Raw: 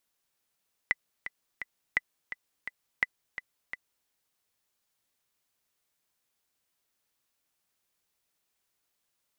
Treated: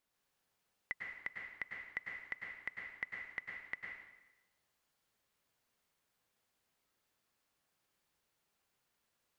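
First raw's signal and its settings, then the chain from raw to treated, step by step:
metronome 170 bpm, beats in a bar 3, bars 3, 2 kHz, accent 12 dB -11 dBFS
treble shelf 3.5 kHz -9 dB; peak limiter -24.5 dBFS; plate-style reverb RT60 0.97 s, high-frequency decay 0.95×, pre-delay 90 ms, DRR -0.5 dB

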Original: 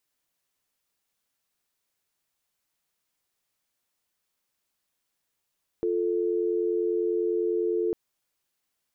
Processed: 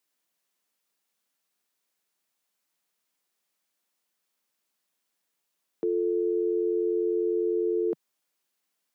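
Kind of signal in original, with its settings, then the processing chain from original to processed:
call progress tone dial tone, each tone -26 dBFS 2.10 s
steep high-pass 160 Hz

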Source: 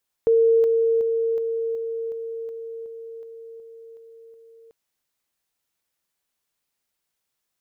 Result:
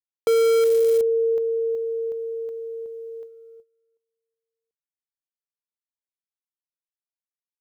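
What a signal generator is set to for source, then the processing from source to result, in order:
level ladder 456 Hz -13.5 dBFS, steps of -3 dB, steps 12, 0.37 s 0.00 s
in parallel at -11.5 dB: integer overflow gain 16.5 dB; on the sum: gate -38 dBFS, range -40 dB

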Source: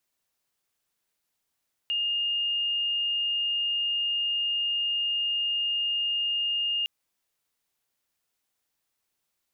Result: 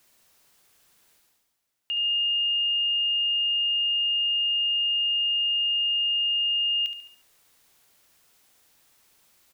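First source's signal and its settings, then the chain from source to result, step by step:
tone sine 2.83 kHz -24.5 dBFS 4.96 s
reverse; upward compressor, threshold -47 dBFS; reverse; feedback delay 71 ms, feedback 48%, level -10 dB

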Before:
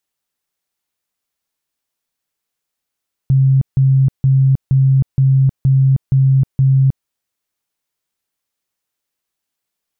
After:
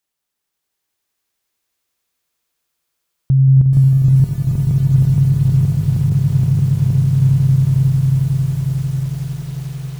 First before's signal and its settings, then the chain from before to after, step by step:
tone bursts 134 Hz, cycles 42, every 0.47 s, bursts 8, -8 dBFS
on a send: echo with a slow build-up 90 ms, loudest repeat 8, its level -6.5 dB; on the sum: bit-crushed delay 431 ms, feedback 80%, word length 6-bit, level -7.5 dB

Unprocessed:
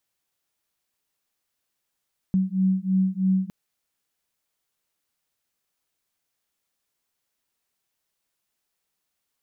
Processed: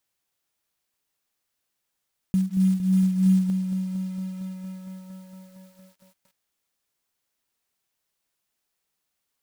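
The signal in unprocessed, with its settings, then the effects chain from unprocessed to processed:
beating tones 187 Hz, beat 3.1 Hz, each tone -22.5 dBFS 1.16 s
block-companded coder 5-bit; bit-crushed delay 230 ms, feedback 80%, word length 8-bit, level -10 dB

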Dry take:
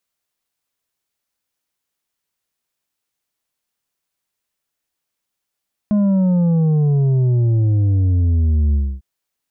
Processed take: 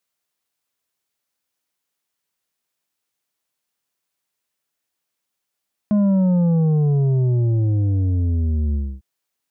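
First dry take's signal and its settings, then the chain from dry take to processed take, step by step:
sub drop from 210 Hz, over 3.10 s, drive 6 dB, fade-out 0.27 s, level -13 dB
high-pass 110 Hz 6 dB/octave

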